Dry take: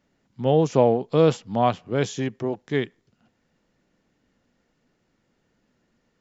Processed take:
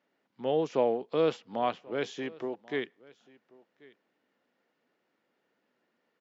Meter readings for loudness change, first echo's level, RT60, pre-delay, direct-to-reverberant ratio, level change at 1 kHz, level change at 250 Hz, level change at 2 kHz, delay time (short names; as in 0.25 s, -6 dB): -8.5 dB, -23.5 dB, none, none, none, -8.5 dB, -11.0 dB, -5.0 dB, 1.086 s